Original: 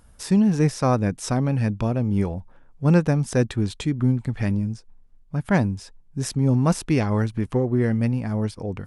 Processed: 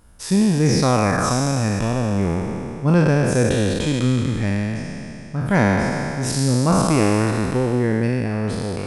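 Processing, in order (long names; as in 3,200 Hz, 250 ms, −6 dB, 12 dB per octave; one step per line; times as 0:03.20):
peak hold with a decay on every bin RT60 2.89 s
0:00.65–0:01.31: parametric band 6,800 Hz → 1,100 Hz +11.5 dB 0.43 octaves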